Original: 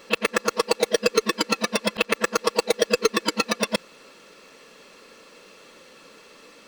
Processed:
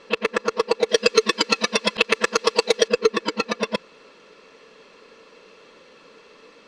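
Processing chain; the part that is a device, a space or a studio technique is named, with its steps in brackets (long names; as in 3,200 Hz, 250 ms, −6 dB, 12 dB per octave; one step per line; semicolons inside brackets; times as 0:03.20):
inside a cardboard box (low-pass filter 4,900 Hz 12 dB per octave; hollow resonant body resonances 440/1,000 Hz, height 6 dB)
0:00.89–0:02.88: high-shelf EQ 2,400 Hz +11 dB
level −1 dB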